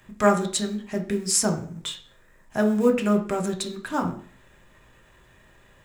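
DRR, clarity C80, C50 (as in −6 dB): 3.0 dB, 15.0 dB, 11.0 dB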